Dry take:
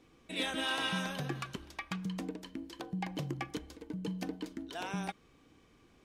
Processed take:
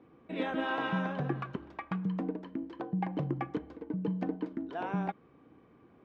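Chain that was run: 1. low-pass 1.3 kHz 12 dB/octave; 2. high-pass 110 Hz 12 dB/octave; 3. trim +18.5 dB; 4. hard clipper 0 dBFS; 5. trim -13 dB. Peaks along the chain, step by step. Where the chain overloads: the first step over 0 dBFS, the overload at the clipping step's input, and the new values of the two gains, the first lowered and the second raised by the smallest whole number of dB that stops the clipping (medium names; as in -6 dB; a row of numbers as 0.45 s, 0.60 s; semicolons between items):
-25.5 dBFS, -24.0 dBFS, -5.5 dBFS, -5.5 dBFS, -18.5 dBFS; nothing clips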